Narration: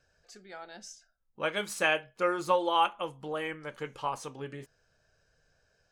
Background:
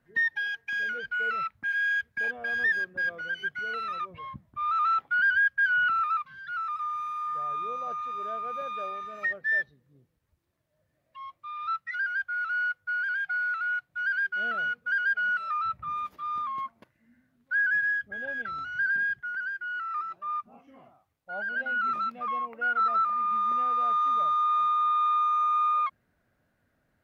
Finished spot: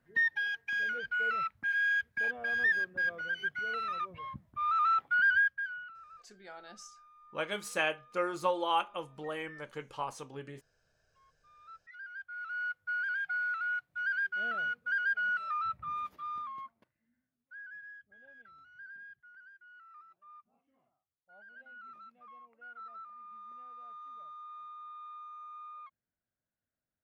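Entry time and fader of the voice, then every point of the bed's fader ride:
5.95 s, −4.0 dB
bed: 0:05.40 −2.5 dB
0:05.94 −26 dB
0:11.41 −26 dB
0:12.84 −4.5 dB
0:16.13 −4.5 dB
0:17.57 −22.5 dB

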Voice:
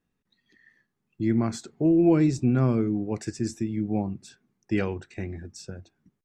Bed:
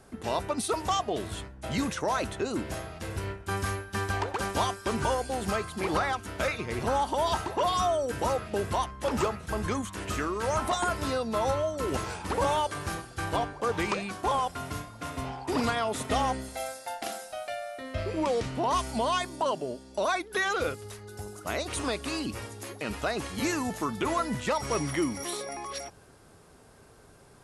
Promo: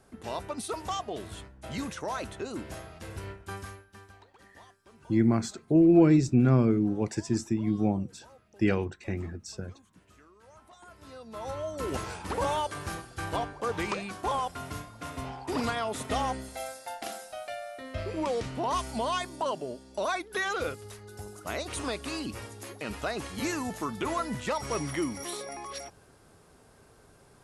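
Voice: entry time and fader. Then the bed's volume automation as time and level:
3.90 s, +0.5 dB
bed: 0:03.44 −5.5 dB
0:04.26 −27 dB
0:10.71 −27 dB
0:11.79 −2.5 dB

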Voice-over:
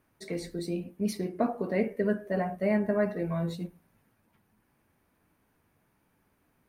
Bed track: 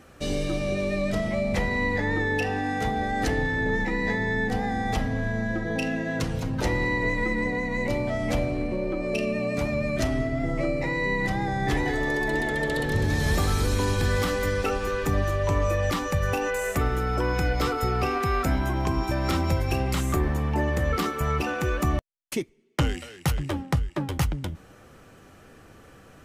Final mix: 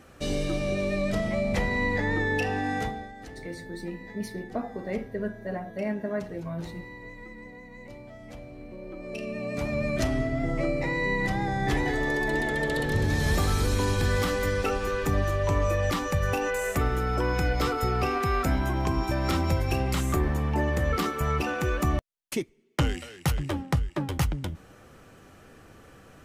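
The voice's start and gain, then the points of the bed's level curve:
3.15 s, −4.0 dB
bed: 0:02.79 −1 dB
0:03.15 −18 dB
0:08.39 −18 dB
0:09.83 −1 dB

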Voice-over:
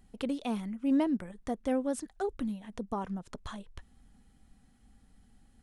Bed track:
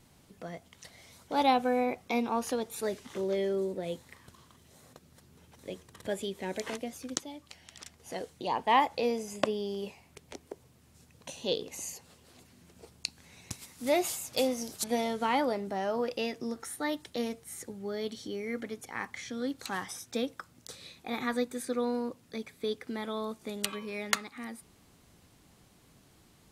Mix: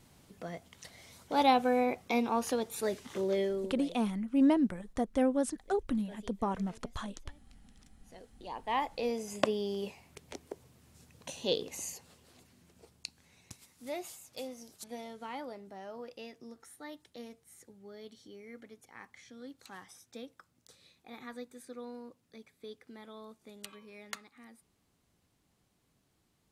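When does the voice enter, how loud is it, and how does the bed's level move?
3.50 s, +2.0 dB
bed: 0:03.41 0 dB
0:04.14 −18.5 dB
0:07.94 −18.5 dB
0:09.36 0 dB
0:11.69 0 dB
0:14.19 −13.5 dB

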